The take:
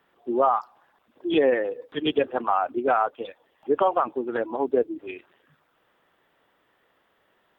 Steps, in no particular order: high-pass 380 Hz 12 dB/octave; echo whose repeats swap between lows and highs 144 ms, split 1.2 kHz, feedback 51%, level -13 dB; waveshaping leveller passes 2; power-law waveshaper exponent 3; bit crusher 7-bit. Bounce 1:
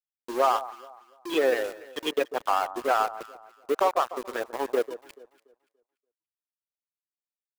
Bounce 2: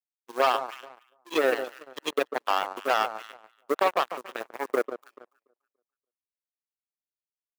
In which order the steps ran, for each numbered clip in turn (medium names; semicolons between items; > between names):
waveshaping leveller > power-law waveshaper > high-pass > bit crusher > echo whose repeats swap between lows and highs; bit crusher > power-law waveshaper > echo whose repeats swap between lows and highs > waveshaping leveller > high-pass